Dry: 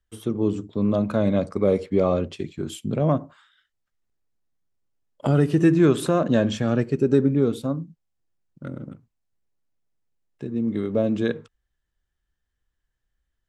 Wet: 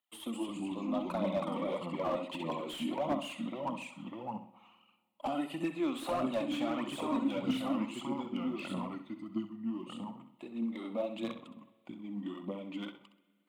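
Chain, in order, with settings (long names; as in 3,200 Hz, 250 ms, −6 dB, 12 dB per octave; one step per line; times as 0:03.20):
high-pass filter 290 Hz 24 dB per octave
downward compressor 2 to 1, threshold −31 dBFS, peak gain reduction 9 dB
delay with pitch and tempo change per echo 189 ms, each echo −2 semitones, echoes 2
phaser with its sweep stopped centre 1,600 Hz, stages 6
phase shifter 1.6 Hz, delay 4.5 ms, feedback 54%
flutter between parallel walls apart 11.2 metres, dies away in 0.37 s
spring reverb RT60 1.8 s, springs 45/54 ms, chirp 75 ms, DRR 20 dB
slew-rate limiting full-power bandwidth 29 Hz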